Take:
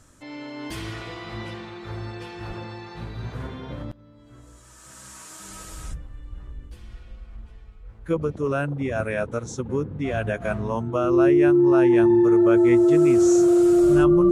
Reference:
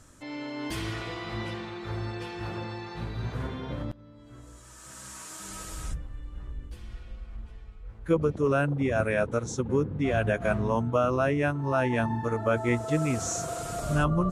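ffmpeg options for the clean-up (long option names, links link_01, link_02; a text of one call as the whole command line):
ffmpeg -i in.wav -filter_complex "[0:a]bandreject=frequency=350:width=30,asplit=3[link_01][link_02][link_03];[link_01]afade=type=out:start_time=2.47:duration=0.02[link_04];[link_02]highpass=frequency=140:width=0.5412,highpass=frequency=140:width=1.3066,afade=type=in:start_time=2.47:duration=0.02,afade=type=out:start_time=2.59:duration=0.02[link_05];[link_03]afade=type=in:start_time=2.59:duration=0.02[link_06];[link_04][link_05][link_06]amix=inputs=3:normalize=0,asplit=3[link_07][link_08][link_09];[link_07]afade=type=out:start_time=6.29:duration=0.02[link_10];[link_08]highpass=frequency=140:width=0.5412,highpass=frequency=140:width=1.3066,afade=type=in:start_time=6.29:duration=0.02,afade=type=out:start_time=6.41:duration=0.02[link_11];[link_09]afade=type=in:start_time=6.41:duration=0.02[link_12];[link_10][link_11][link_12]amix=inputs=3:normalize=0" out.wav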